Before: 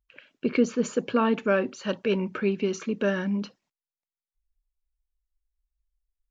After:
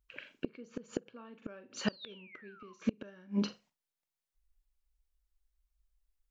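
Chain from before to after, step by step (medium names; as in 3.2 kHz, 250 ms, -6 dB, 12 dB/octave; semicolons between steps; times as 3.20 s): painted sound fall, 1.88–2.74 s, 1–4.9 kHz -30 dBFS; flutter echo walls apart 7.4 m, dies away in 0.23 s; inverted gate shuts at -20 dBFS, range -30 dB; trim +2 dB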